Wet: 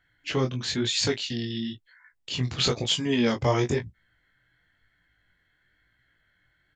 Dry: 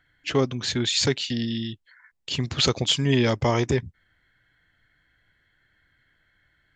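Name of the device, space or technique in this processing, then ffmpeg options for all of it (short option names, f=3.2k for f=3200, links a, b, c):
double-tracked vocal: -filter_complex "[0:a]asplit=2[a][b];[b]adelay=17,volume=-10dB[c];[a][c]amix=inputs=2:normalize=0,flanger=delay=18:depth=5.6:speed=1"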